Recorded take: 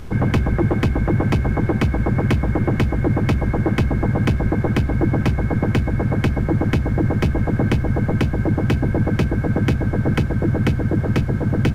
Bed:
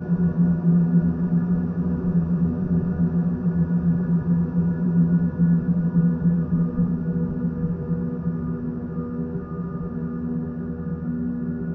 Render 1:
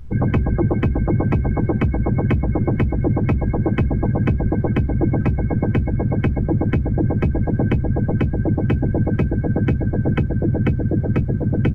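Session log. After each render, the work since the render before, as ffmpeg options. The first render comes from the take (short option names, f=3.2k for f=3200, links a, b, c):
-af "afftdn=nr=18:nf=-24"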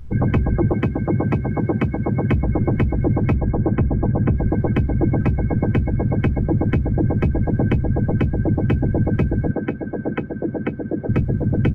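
-filter_complex "[0:a]asettb=1/sr,asplit=3[a][b][c];[a]atrim=end=0.724[d];[b]atrim=start=0.72:end=2.31,asetpts=PTS-STARTPTS,afade=t=in:d=0.004:c=qsin,afade=t=out:st=1.586:d=0.004:c=qsin,highpass=99[e];[c]atrim=start=2.306[f];[d][e]acrossfade=d=0.004:c1=hsin:c2=qsin[g];[g][f]acrossfade=d=0.004:c1=qsin:c2=hsin,asettb=1/sr,asplit=3[h][i][j];[h]atrim=end=3.384[k];[i]atrim=start=3.38:end=4.34,asetpts=PTS-STARTPTS,afade=t=in:d=0.004:c=qsin,afade=t=out:st=0.956:d=0.004:c=qsin,lowpass=1.5k[l];[j]atrim=start=4.336[m];[k][l]acrossfade=d=0.004:c1=hsin:c2=qsin[n];[n][m]acrossfade=d=0.004:c1=qsin:c2=hsin,asettb=1/sr,asplit=3[o][p][q];[o]atrim=end=9.514[r];[p]atrim=start=9.51:end=11.09,asetpts=PTS-STARTPTS,afade=t=in:d=0.004:c=qsin,afade=t=out:st=1.576:d=0.004:c=qsin,acrossover=split=210 2800:gain=0.141 1 0.224[s][t][u];[s][t][u]amix=inputs=3:normalize=0[v];[q]atrim=start=11.086[w];[r][v]acrossfade=d=0.004:c1=hsin:c2=qsin[x];[x][w]acrossfade=d=0.004:c1=qsin:c2=hsin"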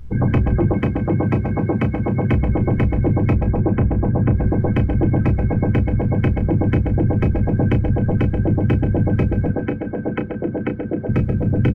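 -filter_complex "[0:a]asplit=2[a][b];[b]adelay=32,volume=-10dB[c];[a][c]amix=inputs=2:normalize=0,aecho=1:1:133|266|399|532|665|798:0.266|0.138|0.0719|0.0374|0.0195|0.0101"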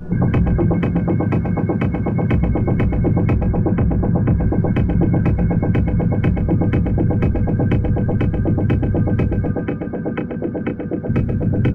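-filter_complex "[1:a]volume=-3dB[a];[0:a][a]amix=inputs=2:normalize=0"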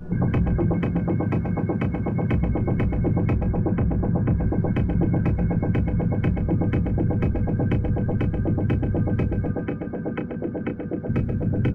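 -af "volume=-5.5dB"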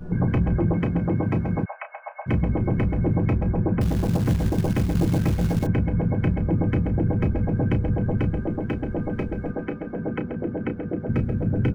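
-filter_complex "[0:a]asplit=3[a][b][c];[a]afade=t=out:st=1.64:d=0.02[d];[b]asuperpass=centerf=1300:order=20:qfactor=0.58,afade=t=in:st=1.64:d=0.02,afade=t=out:st=2.26:d=0.02[e];[c]afade=t=in:st=2.26:d=0.02[f];[d][e][f]amix=inputs=3:normalize=0,asettb=1/sr,asplit=3[g][h][i];[g]atrim=end=3.814[j];[h]atrim=start=3.81:end=5.67,asetpts=PTS-STARTPTS,afade=t=in:d=0.004:c=qsin,afade=t=out:st=1.856:d=0.004:c=qsin,acrusher=bits=5:mode=log:mix=0:aa=0.000001[k];[i]atrim=start=5.666[l];[j][k]acrossfade=d=0.004:c1=hsin:c2=qsin[m];[m][l]acrossfade=d=0.004:c1=qsin:c2=hsin,asettb=1/sr,asplit=3[n][o][p];[n]atrim=end=8.394[q];[o]atrim=start=8.39:end=9.95,asetpts=PTS-STARTPTS,afade=t=in:d=0.004:c=qsin,afade=t=out:st=1.556:d=0.004:c=qsin,equalizer=f=99:w=0.86:g=-9.5[r];[p]atrim=start=9.946[s];[q][r]acrossfade=d=0.004:c1=hsin:c2=qsin[t];[t][s]acrossfade=d=0.004:c1=qsin:c2=hsin"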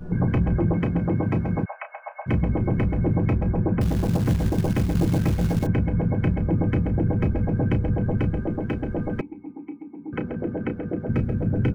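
-filter_complex "[0:a]asettb=1/sr,asplit=3[a][b][c];[a]atrim=end=9.214[d];[b]atrim=start=9.21:end=10.13,asetpts=PTS-STARTPTS,afade=t=in:d=0.004:c=qsin,afade=t=out:st=0.916:d=0.004:c=qsin,asplit=3[e][f][g];[e]bandpass=f=300:t=q:w=8,volume=0dB[h];[f]bandpass=f=870:t=q:w=8,volume=-6dB[i];[g]bandpass=f=2.24k:t=q:w=8,volume=-9dB[j];[h][i][j]amix=inputs=3:normalize=0[k];[c]atrim=start=10.126[l];[d][k]acrossfade=d=0.004:c1=hsin:c2=qsin[m];[m][l]acrossfade=d=0.004:c1=qsin:c2=hsin"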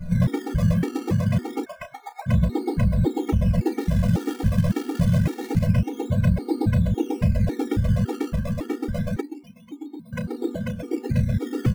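-filter_complex "[0:a]asplit=2[a][b];[b]acrusher=samples=20:mix=1:aa=0.000001:lfo=1:lforange=20:lforate=0.27,volume=-6dB[c];[a][c]amix=inputs=2:normalize=0,afftfilt=real='re*gt(sin(2*PI*1.8*pts/sr)*(1-2*mod(floor(b*sr/1024/240),2)),0)':imag='im*gt(sin(2*PI*1.8*pts/sr)*(1-2*mod(floor(b*sr/1024/240),2)),0)':win_size=1024:overlap=0.75"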